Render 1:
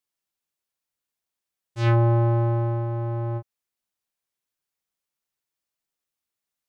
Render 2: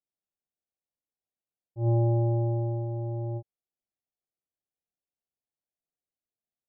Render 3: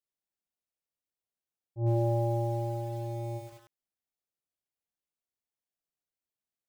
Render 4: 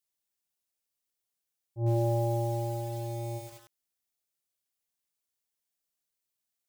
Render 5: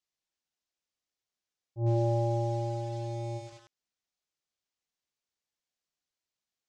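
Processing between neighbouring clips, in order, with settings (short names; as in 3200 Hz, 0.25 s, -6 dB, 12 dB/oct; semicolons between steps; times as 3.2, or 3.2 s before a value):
elliptic low-pass 770 Hz, stop band 50 dB; gain -4 dB
lo-fi delay 98 ms, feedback 55%, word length 8-bit, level -6 dB; gain -2 dB
high shelf 3200 Hz +9.5 dB
LPF 6700 Hz 24 dB/oct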